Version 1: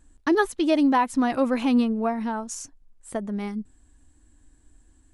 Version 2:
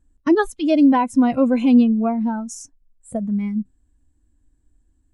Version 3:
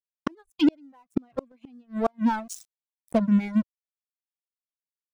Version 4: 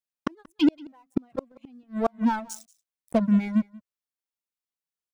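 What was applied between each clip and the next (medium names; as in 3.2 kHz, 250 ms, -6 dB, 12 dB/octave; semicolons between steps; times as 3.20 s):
spectral noise reduction 14 dB; bass shelf 440 Hz +10 dB
crossover distortion -34.5 dBFS; reverb removal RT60 1.1 s; inverted gate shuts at -14 dBFS, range -40 dB; trim +4.5 dB
delay 182 ms -23 dB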